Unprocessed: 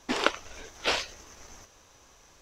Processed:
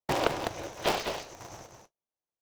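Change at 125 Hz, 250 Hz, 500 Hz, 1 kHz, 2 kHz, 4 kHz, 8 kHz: +10.5, +0.5, +3.0, +2.0, −4.0, −4.0, −1.5 decibels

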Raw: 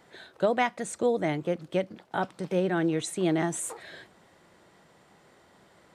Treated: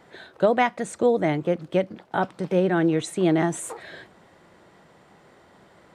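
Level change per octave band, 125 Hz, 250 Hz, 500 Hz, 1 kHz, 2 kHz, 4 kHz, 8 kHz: +5.5, +5.5, +5.5, +5.0, +4.0, +2.0, −0.5 decibels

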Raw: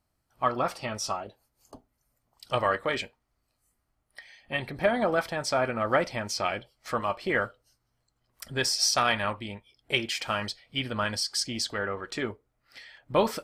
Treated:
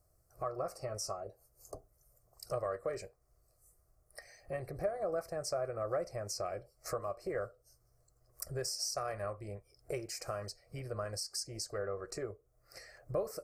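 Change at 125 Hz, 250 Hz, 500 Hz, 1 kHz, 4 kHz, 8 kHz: −6.5, −14.5, −7.5, −14.0, −14.0, −8.0 decibels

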